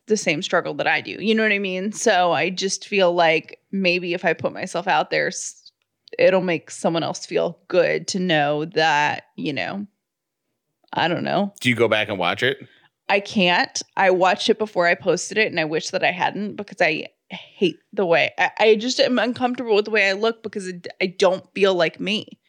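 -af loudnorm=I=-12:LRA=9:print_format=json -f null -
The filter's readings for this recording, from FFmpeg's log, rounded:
"input_i" : "-20.5",
"input_tp" : "-5.5",
"input_lra" : "3.3",
"input_thresh" : "-30.8",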